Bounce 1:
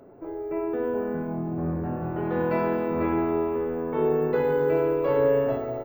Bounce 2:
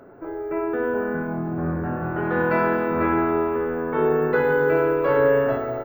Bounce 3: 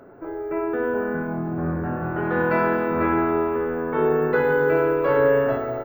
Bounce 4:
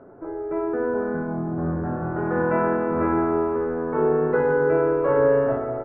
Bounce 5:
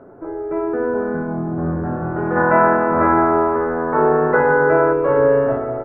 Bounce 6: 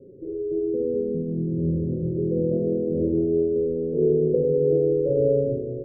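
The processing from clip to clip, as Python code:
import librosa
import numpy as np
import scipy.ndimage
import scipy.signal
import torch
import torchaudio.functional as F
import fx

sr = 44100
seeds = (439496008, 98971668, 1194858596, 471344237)

y1 = fx.peak_eq(x, sr, hz=1500.0, db=11.0, octaves=0.76)
y1 = y1 * librosa.db_to_amplitude(2.5)
y2 = y1
y3 = scipy.signal.sosfilt(scipy.signal.butter(2, 1300.0, 'lowpass', fs=sr, output='sos'), y2)
y4 = fx.spec_box(y3, sr, start_s=2.36, length_s=2.57, low_hz=530.0, high_hz=2100.0, gain_db=7)
y4 = y4 * librosa.db_to_amplitude(4.0)
y5 = scipy.signal.sosfilt(scipy.signal.cheby1(6, 6, 550.0, 'lowpass', fs=sr, output='sos'), y4)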